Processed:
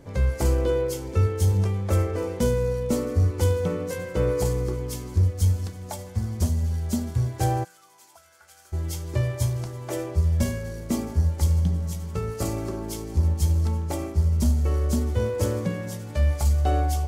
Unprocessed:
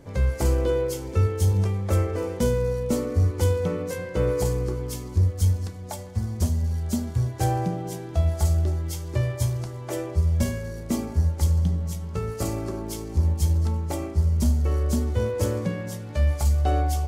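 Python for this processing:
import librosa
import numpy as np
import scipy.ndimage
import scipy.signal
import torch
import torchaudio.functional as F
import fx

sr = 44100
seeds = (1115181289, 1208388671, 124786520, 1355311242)

y = fx.auto_wah(x, sr, base_hz=730.0, top_hz=1500.0, q=14.0, full_db=-21.5, direction='up', at=(7.63, 8.72), fade=0.02)
y = fx.echo_wet_highpass(y, sr, ms=1083, feedback_pct=79, hz=1900.0, wet_db=-17)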